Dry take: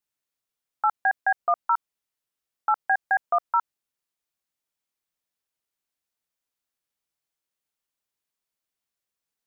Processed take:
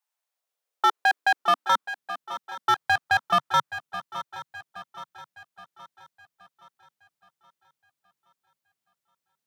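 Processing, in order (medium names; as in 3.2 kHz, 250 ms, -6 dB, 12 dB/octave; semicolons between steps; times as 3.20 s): dynamic bell 1.2 kHz, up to +7 dB, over -34 dBFS, Q 1.1; hard clipper -16.5 dBFS, distortion -10 dB; high-pass sweep 850 Hz -> 140 Hz, 0.04–2.35 s; shuffle delay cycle 822 ms, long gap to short 3:1, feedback 46%, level -14 dB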